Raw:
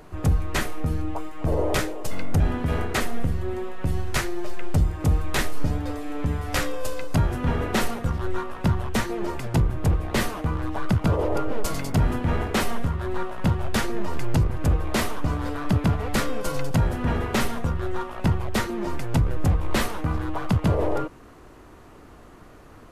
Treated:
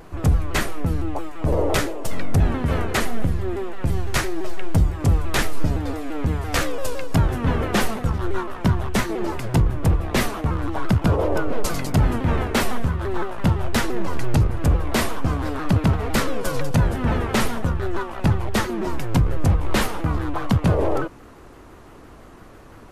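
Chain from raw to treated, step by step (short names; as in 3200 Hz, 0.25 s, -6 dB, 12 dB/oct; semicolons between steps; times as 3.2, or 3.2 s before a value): shaped vibrato saw down 5.9 Hz, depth 160 cents; gain +3 dB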